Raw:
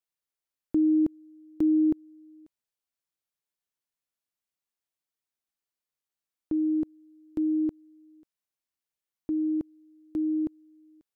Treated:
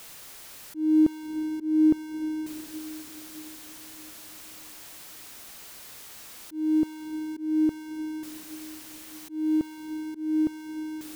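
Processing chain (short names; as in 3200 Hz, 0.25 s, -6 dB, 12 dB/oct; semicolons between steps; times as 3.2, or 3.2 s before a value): zero-crossing step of -41 dBFS; diffused feedback echo 0.663 s, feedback 46%, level -15 dB; auto swell 0.262 s; gain +4 dB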